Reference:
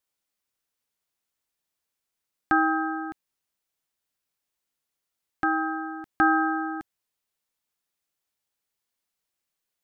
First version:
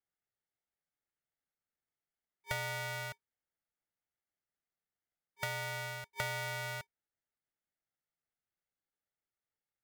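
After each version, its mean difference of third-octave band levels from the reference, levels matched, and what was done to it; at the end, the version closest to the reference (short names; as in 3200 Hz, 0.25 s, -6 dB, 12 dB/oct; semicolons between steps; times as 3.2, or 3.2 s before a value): 27.0 dB: FFT band-pass 490–1600 Hz; compressor 6:1, threshold -32 dBFS, peak gain reduction 13.5 dB; polarity switched at an audio rate 670 Hz; gain -3.5 dB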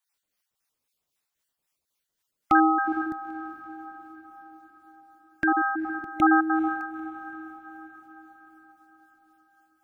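4.0 dB: random spectral dropouts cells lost 27%; harmonic tremolo 3.8 Hz, depth 50%, crossover 830 Hz; diffused feedback echo 0.456 s, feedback 56%, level -14 dB; gain +6 dB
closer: second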